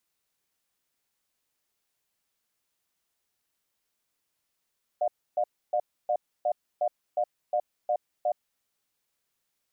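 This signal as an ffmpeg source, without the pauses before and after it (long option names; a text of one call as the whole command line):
ffmpeg -f lavfi -i "aevalsrc='0.0531*(sin(2*PI*605*t)+sin(2*PI*716*t))*clip(min(mod(t,0.36),0.07-mod(t,0.36))/0.005,0,1)':duration=3.45:sample_rate=44100" out.wav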